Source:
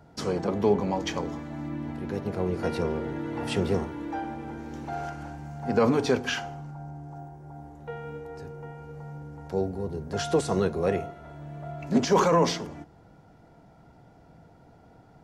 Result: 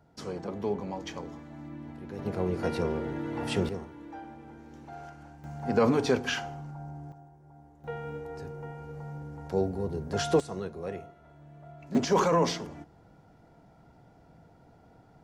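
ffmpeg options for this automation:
-af "asetnsamples=n=441:p=0,asendcmd='2.19 volume volume -1.5dB;3.69 volume volume -10.5dB;5.44 volume volume -1.5dB;7.12 volume volume -10.5dB;7.84 volume volume 0dB;10.4 volume volume -11dB;11.95 volume volume -3dB',volume=0.376"

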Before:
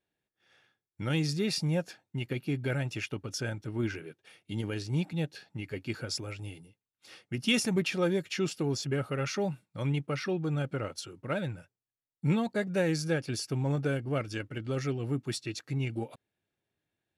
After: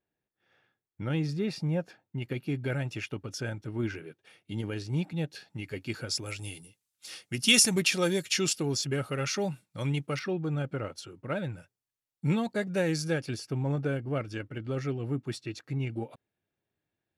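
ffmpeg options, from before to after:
-af "asetnsamples=n=441:p=0,asendcmd='2.22 equalizer g -3;5.31 equalizer g 4;6.26 equalizer g 14.5;8.53 equalizer g 7;10.19 equalizer g -4.5;11.53 equalizer g 2;13.34 equalizer g -7',equalizer=f=9300:t=o:w=2.6:g=-13"

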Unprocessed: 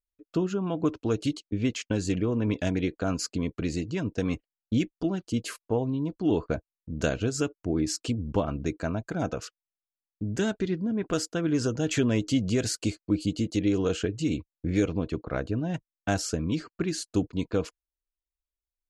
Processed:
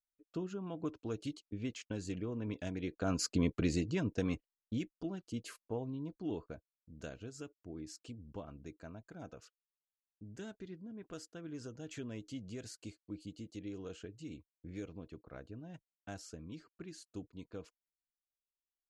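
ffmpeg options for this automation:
-af "volume=0.841,afade=t=in:st=2.81:d=0.61:silence=0.266073,afade=t=out:st=3.42:d=1.36:silence=0.281838,afade=t=out:st=6.16:d=0.4:silence=0.446684"

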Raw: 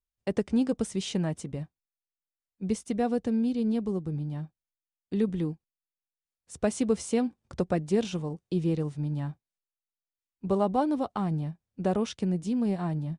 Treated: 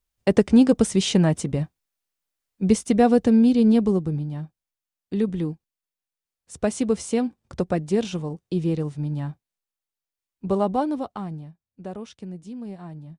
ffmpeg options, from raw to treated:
-af "volume=3.35,afade=t=out:st=3.83:d=0.44:silence=0.446684,afade=t=out:st=10.69:d=0.78:silence=0.266073"

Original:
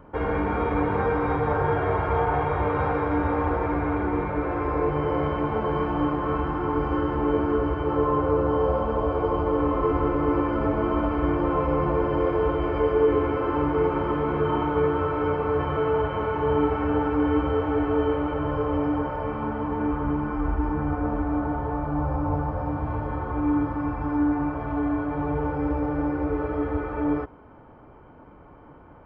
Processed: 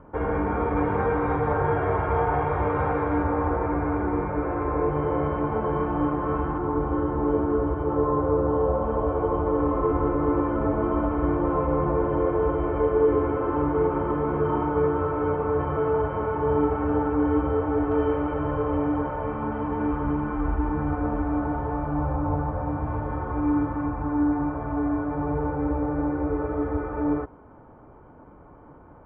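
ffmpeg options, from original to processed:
-af "asetnsamples=n=441:p=0,asendcmd='0.77 lowpass f 2300;3.23 lowpass f 1700;6.58 lowpass f 1200;8.84 lowpass f 1500;17.92 lowpass f 2200;19.52 lowpass f 2900;22.12 lowpass f 2200;23.86 lowpass f 1600',lowpass=1800"

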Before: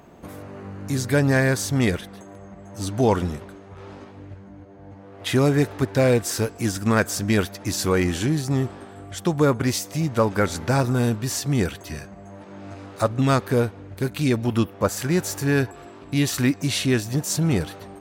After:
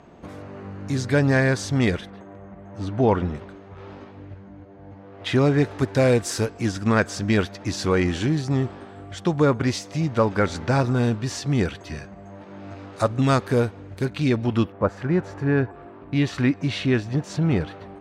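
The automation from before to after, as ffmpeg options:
-af "asetnsamples=n=441:p=0,asendcmd='2.1 lowpass f 2600;3.35 lowpass f 4500;5.67 lowpass f 8600;6.46 lowpass f 5100;12.93 lowpass f 8400;14.05 lowpass f 4600;14.72 lowpass f 1700;16.13 lowpass f 3000',lowpass=5600"

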